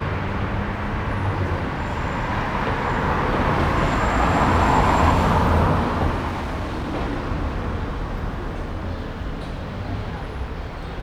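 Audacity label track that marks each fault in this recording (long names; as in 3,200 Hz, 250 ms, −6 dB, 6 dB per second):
6.270000	6.950000	clipping −22.5 dBFS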